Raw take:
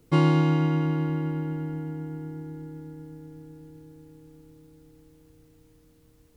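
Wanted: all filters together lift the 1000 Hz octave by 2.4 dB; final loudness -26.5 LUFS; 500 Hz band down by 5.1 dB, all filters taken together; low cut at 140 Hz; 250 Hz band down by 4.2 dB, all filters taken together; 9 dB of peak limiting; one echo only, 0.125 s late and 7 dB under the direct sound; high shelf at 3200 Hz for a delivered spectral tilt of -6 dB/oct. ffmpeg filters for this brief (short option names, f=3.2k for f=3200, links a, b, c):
-af "highpass=140,equalizer=f=250:t=o:g=-3.5,equalizer=f=500:t=o:g=-6.5,equalizer=f=1k:t=o:g=5.5,highshelf=f=3.2k:g=-7.5,alimiter=limit=-21dB:level=0:latency=1,aecho=1:1:125:0.447,volume=7dB"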